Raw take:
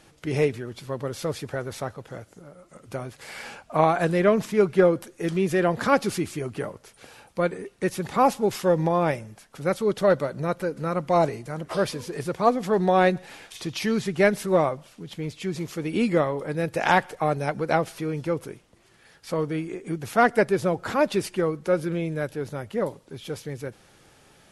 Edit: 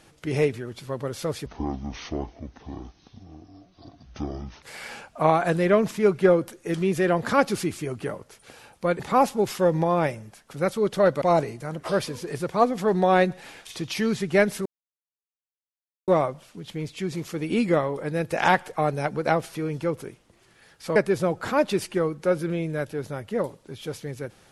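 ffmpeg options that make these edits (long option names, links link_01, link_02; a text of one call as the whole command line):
ffmpeg -i in.wav -filter_complex "[0:a]asplit=7[link_01][link_02][link_03][link_04][link_05][link_06][link_07];[link_01]atrim=end=1.464[link_08];[link_02]atrim=start=1.46:end=3.17,asetpts=PTS-STARTPTS,asetrate=23814,aresample=44100[link_09];[link_03]atrim=start=3.166:end=7.542[link_10];[link_04]atrim=start=8.038:end=10.262[link_11];[link_05]atrim=start=11.068:end=14.51,asetpts=PTS-STARTPTS,afade=type=out:start_time=3.438:duration=0.004:curve=hsin,apad=pad_dur=1.42[link_12];[link_06]atrim=start=14.51:end=19.392,asetpts=PTS-STARTPTS,afade=type=in:duration=0.004:curve=hsin[link_13];[link_07]atrim=start=20.378[link_14];[link_08][link_09]acrossfade=duration=0.004:curve1=hsin:curve2=hsin[link_15];[link_15][link_10]acrossfade=duration=0.004:curve1=hsin:curve2=hsin[link_16];[link_16][link_11]acrossfade=duration=0.004:curve1=hsin:curve2=hsin[link_17];[link_12][link_13]concat=n=2:v=0:a=1[link_18];[link_17][link_18]acrossfade=duration=0.004:curve1=hsin:curve2=hsin[link_19];[link_19][link_14]acrossfade=duration=0.004:curve1=hsin:curve2=hsin" out.wav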